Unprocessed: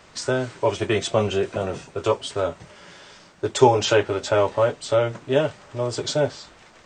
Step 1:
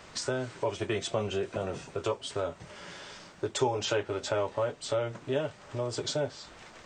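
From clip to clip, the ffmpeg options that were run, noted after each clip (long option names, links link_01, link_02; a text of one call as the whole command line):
ffmpeg -i in.wav -af "acompressor=threshold=-35dB:ratio=2" out.wav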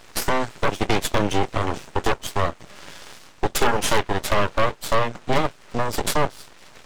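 ffmpeg -i in.wav -af "aeval=exprs='0.2*(cos(1*acos(clip(val(0)/0.2,-1,1)))-cos(1*PI/2))+0.0891*(cos(8*acos(clip(val(0)/0.2,-1,1)))-cos(8*PI/2))':channel_layout=same,aeval=exprs='abs(val(0))':channel_layout=same,volume=4dB" out.wav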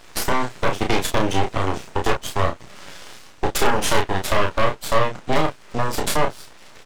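ffmpeg -i in.wav -filter_complex "[0:a]asplit=2[link_01][link_02];[link_02]adelay=32,volume=-5dB[link_03];[link_01][link_03]amix=inputs=2:normalize=0" out.wav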